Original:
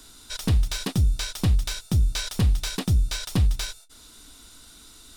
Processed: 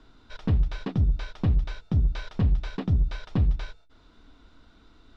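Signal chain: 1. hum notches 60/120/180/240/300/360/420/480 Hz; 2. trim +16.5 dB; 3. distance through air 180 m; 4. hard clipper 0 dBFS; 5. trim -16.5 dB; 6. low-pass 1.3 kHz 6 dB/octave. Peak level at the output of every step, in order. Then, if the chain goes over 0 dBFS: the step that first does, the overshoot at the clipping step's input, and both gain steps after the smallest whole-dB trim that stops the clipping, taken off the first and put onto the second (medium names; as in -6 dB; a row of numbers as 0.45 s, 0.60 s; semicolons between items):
-12.0 dBFS, +4.5 dBFS, +4.5 dBFS, 0.0 dBFS, -16.5 dBFS, -16.5 dBFS; step 2, 4.5 dB; step 2 +11.5 dB, step 5 -11.5 dB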